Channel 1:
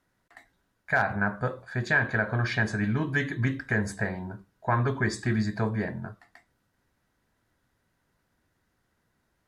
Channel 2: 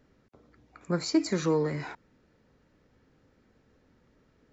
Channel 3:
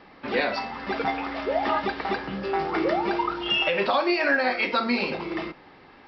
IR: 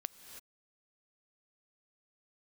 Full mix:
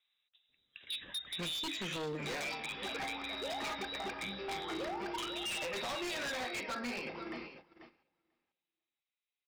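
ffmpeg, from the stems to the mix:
-filter_complex "[0:a]acompressor=threshold=-27dB:ratio=6,adelay=500,volume=-6.5dB[a];[1:a]volume=1.5dB,asplit=2[b][c];[c]volume=-12.5dB[d];[2:a]highshelf=f=4.4k:g=9,adelay=1950,volume=-14dB,asplit=2[e][f];[f]volume=-11.5dB[g];[a][b]amix=inputs=2:normalize=0,lowpass=f=3.4k:t=q:w=0.5098,lowpass=f=3.4k:t=q:w=0.6013,lowpass=f=3.4k:t=q:w=0.9,lowpass=f=3.4k:t=q:w=2.563,afreqshift=-4000,acompressor=threshold=-33dB:ratio=4,volume=0dB[h];[d][g]amix=inputs=2:normalize=0,aecho=0:1:491|982|1473:1|0.17|0.0289[i];[e][h][i]amix=inputs=3:normalize=0,agate=range=-13dB:threshold=-53dB:ratio=16:detection=peak,equalizer=f=4k:t=o:w=0.27:g=-9,aeval=exprs='0.0224*(abs(mod(val(0)/0.0224+3,4)-2)-1)':c=same"

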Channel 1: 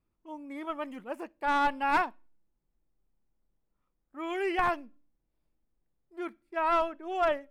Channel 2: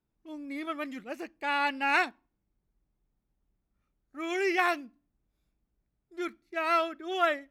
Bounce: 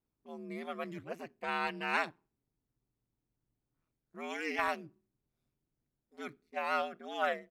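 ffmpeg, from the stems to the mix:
-filter_complex "[0:a]highpass=f=62:p=1,tiltshelf=f=1.5k:g=4.5,acompressor=threshold=-29dB:ratio=6,volume=-8dB[a];[1:a]volume=-1,adelay=1.8,volume=-4dB[b];[a][b]amix=inputs=2:normalize=0,aeval=exprs='val(0)*sin(2*PI*82*n/s)':c=same"

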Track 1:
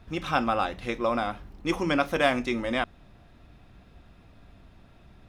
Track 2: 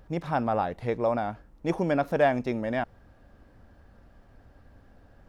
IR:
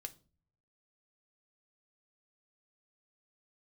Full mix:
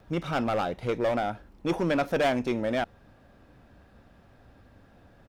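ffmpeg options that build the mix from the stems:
-filter_complex "[0:a]volume=-7.5dB[a];[1:a]highpass=95,asoftclip=type=hard:threshold=-25.5dB,adelay=2.2,volume=1dB[b];[a][b]amix=inputs=2:normalize=0"

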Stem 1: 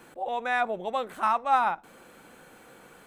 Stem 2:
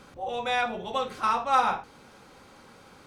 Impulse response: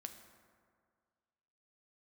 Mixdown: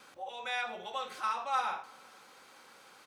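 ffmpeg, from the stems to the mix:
-filter_complex "[0:a]bandreject=f=650:w=12,alimiter=limit=-22dB:level=0:latency=1:release=382,volume=-10dB,asplit=2[a][b];[1:a]volume=-1,adelay=1,volume=-2.5dB,asplit=2[c][d];[d]volume=-10dB[e];[b]apad=whole_len=135281[f];[c][f]sidechaincompress=threshold=-45dB:ratio=8:attack=29:release=146[g];[2:a]atrim=start_sample=2205[h];[e][h]afir=irnorm=-1:irlink=0[i];[a][g][i]amix=inputs=3:normalize=0,highpass=f=1.1k:p=1"

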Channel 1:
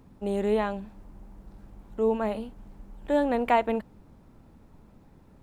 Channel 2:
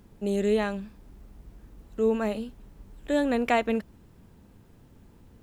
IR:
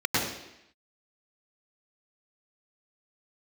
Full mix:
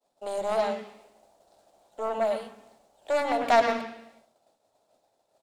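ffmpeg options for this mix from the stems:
-filter_complex "[0:a]equalizer=f=1k:t=o:w=1:g=-7,equalizer=f=2k:t=o:w=1:g=-6,equalizer=f=4k:t=o:w=1:g=8,equalizer=f=8k:t=o:w=1:g=9,asoftclip=type=tanh:threshold=-25.5dB,highpass=f=660:t=q:w=4.9,volume=0dB[a];[1:a]aecho=1:1:7.5:0.44,aeval=exprs='0.299*(cos(1*acos(clip(val(0)/0.299,-1,1)))-cos(1*PI/2))+0.119*(cos(3*acos(clip(val(0)/0.299,-1,1)))-cos(3*PI/2))+0.0237*(cos(4*acos(clip(val(0)/0.299,-1,1)))-cos(4*PI/2))+0.00944*(cos(5*acos(clip(val(0)/0.299,-1,1)))-cos(5*PI/2))':c=same,volume=1.5dB,asplit=2[b][c];[c]volume=-14.5dB[d];[2:a]atrim=start_sample=2205[e];[d][e]afir=irnorm=-1:irlink=0[f];[a][b][f]amix=inputs=3:normalize=0,agate=range=-33dB:threshold=-53dB:ratio=3:detection=peak,lowshelf=f=170:g=-6"

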